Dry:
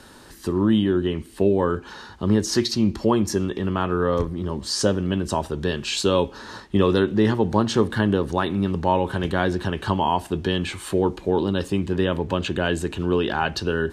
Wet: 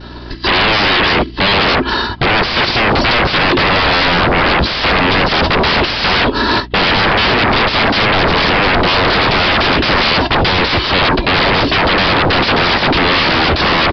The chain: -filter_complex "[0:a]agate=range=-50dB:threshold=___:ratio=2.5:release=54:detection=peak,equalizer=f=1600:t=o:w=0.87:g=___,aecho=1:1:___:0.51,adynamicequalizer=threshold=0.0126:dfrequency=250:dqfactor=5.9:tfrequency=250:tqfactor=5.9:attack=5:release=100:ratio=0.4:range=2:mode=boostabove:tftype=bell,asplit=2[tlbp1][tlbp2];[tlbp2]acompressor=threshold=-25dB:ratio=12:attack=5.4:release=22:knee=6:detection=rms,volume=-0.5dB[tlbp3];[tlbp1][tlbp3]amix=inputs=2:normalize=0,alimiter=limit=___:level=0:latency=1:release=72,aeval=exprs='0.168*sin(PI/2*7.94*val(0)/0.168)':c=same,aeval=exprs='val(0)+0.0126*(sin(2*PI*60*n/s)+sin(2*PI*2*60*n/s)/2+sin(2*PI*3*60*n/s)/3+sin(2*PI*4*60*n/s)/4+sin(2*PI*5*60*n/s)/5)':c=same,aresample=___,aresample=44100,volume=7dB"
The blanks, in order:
-33dB, -2.5, 3, -15.5dB, 11025